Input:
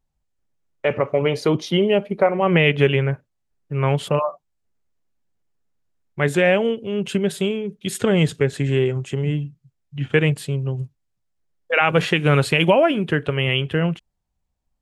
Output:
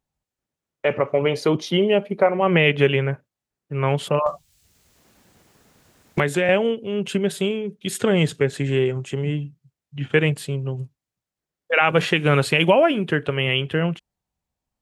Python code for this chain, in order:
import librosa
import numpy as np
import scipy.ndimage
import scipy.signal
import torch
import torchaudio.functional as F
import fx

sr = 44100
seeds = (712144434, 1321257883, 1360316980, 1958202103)

y = fx.highpass(x, sr, hz=130.0, slope=6)
y = fx.band_squash(y, sr, depth_pct=100, at=(4.26, 6.49))